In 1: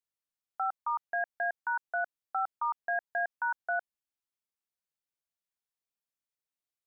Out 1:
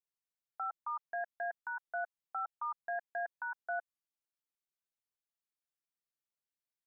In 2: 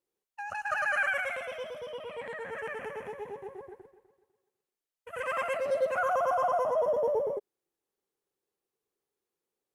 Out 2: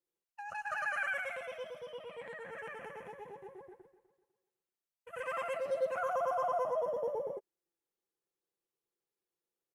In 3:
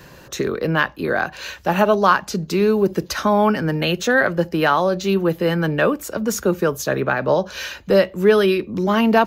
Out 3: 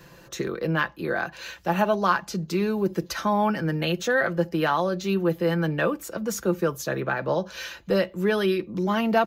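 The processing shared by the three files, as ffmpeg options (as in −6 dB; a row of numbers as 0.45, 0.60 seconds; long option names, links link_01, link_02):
-af "aecho=1:1:5.9:0.41,volume=-7dB"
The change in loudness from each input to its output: −6.5, −6.0, −6.5 LU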